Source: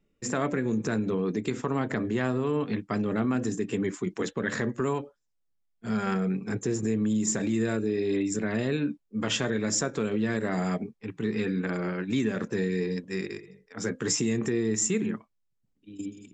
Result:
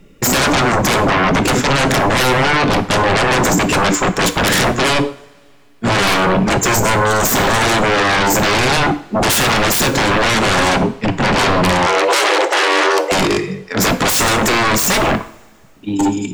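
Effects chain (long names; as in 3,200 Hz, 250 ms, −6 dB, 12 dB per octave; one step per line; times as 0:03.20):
sine wavefolder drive 19 dB, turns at −14.5 dBFS
0:11.86–0:13.12: frequency shifter +300 Hz
coupled-rooms reverb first 0.52 s, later 2.6 s, from −22 dB, DRR 9.5 dB
level +3.5 dB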